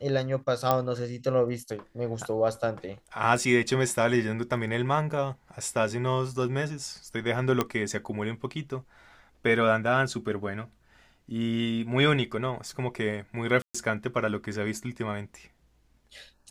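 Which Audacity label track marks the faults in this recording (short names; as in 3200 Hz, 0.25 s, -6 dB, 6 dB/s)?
0.710000	0.710000	pop -10 dBFS
7.610000	7.610000	pop -10 dBFS
13.620000	13.740000	gap 0.125 s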